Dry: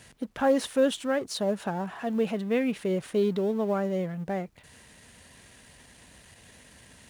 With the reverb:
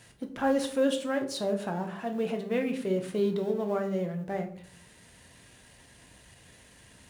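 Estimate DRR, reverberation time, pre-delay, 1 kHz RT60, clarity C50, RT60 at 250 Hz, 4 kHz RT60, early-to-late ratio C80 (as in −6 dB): 4.5 dB, 0.55 s, 6 ms, 0.50 s, 11.5 dB, 0.75 s, 0.35 s, 14.5 dB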